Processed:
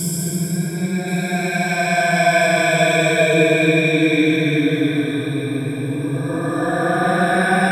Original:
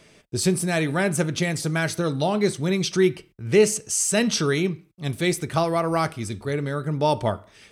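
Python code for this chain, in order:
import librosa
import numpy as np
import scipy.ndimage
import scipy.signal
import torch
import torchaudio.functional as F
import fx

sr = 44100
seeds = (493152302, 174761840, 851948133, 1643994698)

y = fx.spec_ripple(x, sr, per_octave=1.7, drift_hz=0.62, depth_db=16)
y = fx.paulstretch(y, sr, seeds[0], factor=20.0, window_s=0.1, from_s=0.62)
y = fx.echo_alternate(y, sr, ms=540, hz=2200.0, feedback_pct=52, wet_db=-10.0)
y = y * librosa.db_to_amplitude(2.5)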